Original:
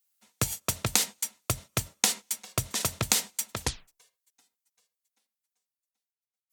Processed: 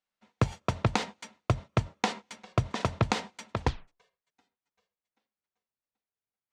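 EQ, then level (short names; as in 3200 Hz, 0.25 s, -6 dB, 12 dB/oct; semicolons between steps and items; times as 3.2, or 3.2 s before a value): tape spacing loss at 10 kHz 35 dB; dynamic EQ 920 Hz, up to +4 dB, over -52 dBFS, Q 1.7; +6.0 dB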